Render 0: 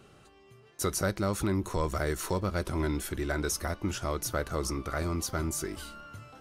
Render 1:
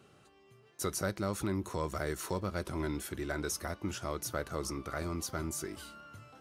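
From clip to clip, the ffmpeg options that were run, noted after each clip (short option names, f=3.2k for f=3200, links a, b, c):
-af "highpass=81,volume=-4.5dB"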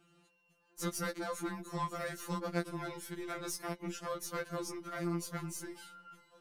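-af "aeval=exprs='0.106*(cos(1*acos(clip(val(0)/0.106,-1,1)))-cos(1*PI/2))+0.0531*(cos(2*acos(clip(val(0)/0.106,-1,1)))-cos(2*PI/2))+0.0075*(cos(5*acos(clip(val(0)/0.106,-1,1)))-cos(5*PI/2))+0.00841*(cos(7*acos(clip(val(0)/0.106,-1,1)))-cos(7*PI/2))+0.0075*(cos(8*acos(clip(val(0)/0.106,-1,1)))-cos(8*PI/2))':c=same,afftfilt=real='re*2.83*eq(mod(b,8),0)':imag='im*2.83*eq(mod(b,8),0)':win_size=2048:overlap=0.75,volume=-1dB"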